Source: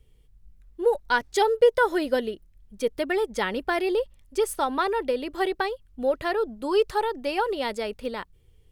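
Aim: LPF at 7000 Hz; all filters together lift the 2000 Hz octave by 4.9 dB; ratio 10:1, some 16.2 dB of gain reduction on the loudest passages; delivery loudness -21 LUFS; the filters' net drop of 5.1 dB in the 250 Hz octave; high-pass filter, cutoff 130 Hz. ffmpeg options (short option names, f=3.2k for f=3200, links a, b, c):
-af "highpass=130,lowpass=7k,equalizer=f=250:t=o:g=-8,equalizer=f=2k:t=o:g=7,acompressor=threshold=-31dB:ratio=10,volume=15dB"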